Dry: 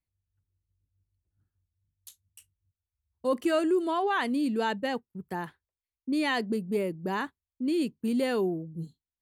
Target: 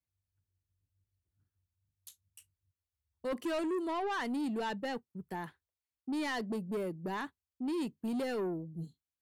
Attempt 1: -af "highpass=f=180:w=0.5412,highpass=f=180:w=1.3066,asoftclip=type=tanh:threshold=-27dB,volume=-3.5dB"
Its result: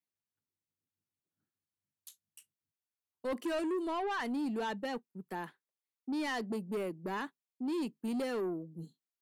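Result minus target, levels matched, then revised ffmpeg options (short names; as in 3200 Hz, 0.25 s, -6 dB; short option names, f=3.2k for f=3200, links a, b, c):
125 Hz band -3.0 dB
-af "highpass=f=55:w=0.5412,highpass=f=55:w=1.3066,asoftclip=type=tanh:threshold=-27dB,volume=-3.5dB"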